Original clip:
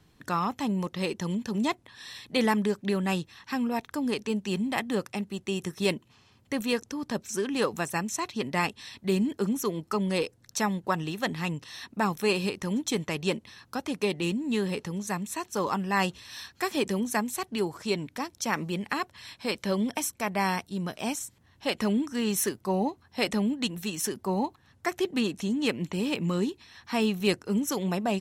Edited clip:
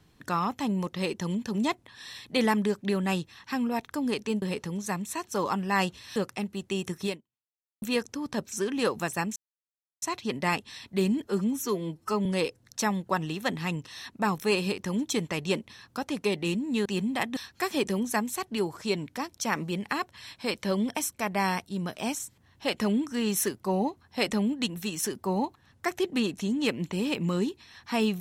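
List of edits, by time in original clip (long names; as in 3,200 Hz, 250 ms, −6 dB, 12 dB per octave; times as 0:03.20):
0:04.42–0:04.93: swap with 0:14.63–0:16.37
0:05.82–0:06.59: fade out exponential
0:08.13: splice in silence 0.66 s
0:09.36–0:10.03: time-stretch 1.5×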